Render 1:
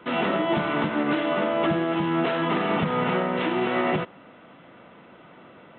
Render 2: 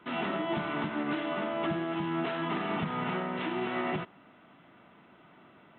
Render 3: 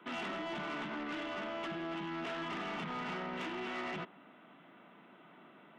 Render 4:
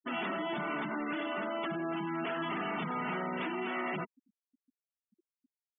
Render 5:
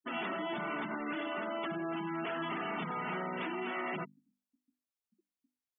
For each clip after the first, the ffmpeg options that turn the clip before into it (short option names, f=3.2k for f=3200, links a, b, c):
-af "equalizer=f=510:w=6.3:g=-11,volume=-7.5dB"
-filter_complex "[0:a]highpass=f=160:w=0.5412,highpass=f=160:w=1.3066,acrossover=split=1300[a][b];[a]alimiter=level_in=7.5dB:limit=-24dB:level=0:latency=1,volume=-7.5dB[c];[c][b]amix=inputs=2:normalize=0,asoftclip=type=tanh:threshold=-33.5dB,volume=-1dB"
-af "afftfilt=real='re*gte(hypot(re,im),0.0112)':imag='im*gte(hypot(re,im),0.0112)':win_size=1024:overlap=0.75,volume=5dB"
-af "bandreject=f=50:t=h:w=6,bandreject=f=100:t=h:w=6,bandreject=f=150:t=h:w=6,bandreject=f=200:t=h:w=6,bandreject=f=250:t=h:w=6,bandreject=f=300:t=h:w=6,volume=-1.5dB"